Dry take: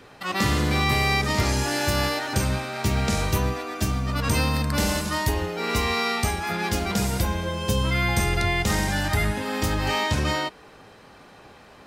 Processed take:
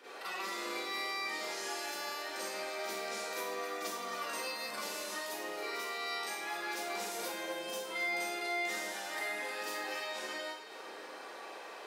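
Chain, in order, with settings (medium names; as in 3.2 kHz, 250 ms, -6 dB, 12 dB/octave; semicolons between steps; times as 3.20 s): high-pass 360 Hz 24 dB/octave; compression 10:1, threshold -39 dBFS, peak gain reduction 18 dB; two-band feedback delay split 490 Hz, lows 661 ms, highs 271 ms, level -12 dB; Schroeder reverb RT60 0.55 s, combs from 33 ms, DRR -10 dB; trim -8 dB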